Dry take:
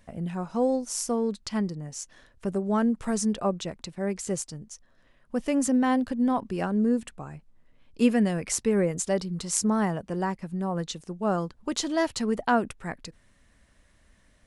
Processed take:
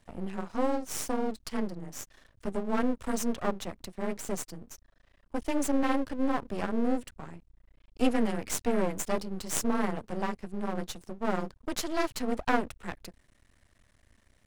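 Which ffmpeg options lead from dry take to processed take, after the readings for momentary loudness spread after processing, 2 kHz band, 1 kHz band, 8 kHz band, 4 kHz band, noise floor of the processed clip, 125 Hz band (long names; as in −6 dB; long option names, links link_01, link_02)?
13 LU, −2.0 dB, −3.0 dB, −5.5 dB, −4.0 dB, −67 dBFS, −8.5 dB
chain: -af "afreqshift=20,aeval=exprs='max(val(0),0)':channel_layout=same"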